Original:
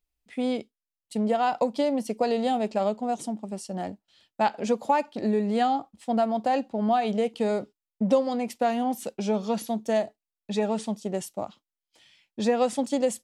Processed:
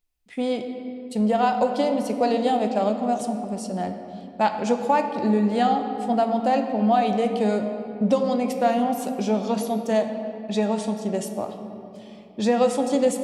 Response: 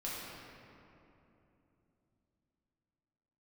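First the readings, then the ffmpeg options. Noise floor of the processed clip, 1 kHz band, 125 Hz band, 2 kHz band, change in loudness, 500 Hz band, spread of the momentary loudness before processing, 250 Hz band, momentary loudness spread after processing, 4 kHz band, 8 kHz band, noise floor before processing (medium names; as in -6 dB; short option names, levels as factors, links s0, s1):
-43 dBFS, +4.0 dB, +5.0 dB, +3.5 dB, +3.5 dB, +3.5 dB, 10 LU, +4.5 dB, 11 LU, +3.0 dB, +2.5 dB, under -85 dBFS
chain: -filter_complex "[0:a]asplit=2[s0][s1];[1:a]atrim=start_sample=2205[s2];[s1][s2]afir=irnorm=-1:irlink=0,volume=0.562[s3];[s0][s3]amix=inputs=2:normalize=0"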